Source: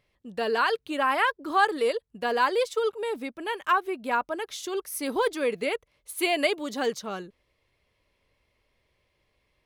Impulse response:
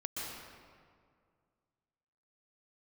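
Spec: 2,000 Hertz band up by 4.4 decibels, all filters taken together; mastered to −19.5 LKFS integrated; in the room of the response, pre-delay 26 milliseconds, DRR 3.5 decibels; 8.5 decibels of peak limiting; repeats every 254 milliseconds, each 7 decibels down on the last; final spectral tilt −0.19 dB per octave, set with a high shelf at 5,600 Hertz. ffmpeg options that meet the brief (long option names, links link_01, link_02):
-filter_complex "[0:a]equalizer=frequency=2000:width_type=o:gain=6.5,highshelf=frequency=5600:gain=-6.5,alimiter=limit=-16dB:level=0:latency=1,aecho=1:1:254|508|762|1016|1270:0.447|0.201|0.0905|0.0407|0.0183,asplit=2[link_01][link_02];[1:a]atrim=start_sample=2205,adelay=26[link_03];[link_02][link_03]afir=irnorm=-1:irlink=0,volume=-5.5dB[link_04];[link_01][link_04]amix=inputs=2:normalize=0,volume=5.5dB"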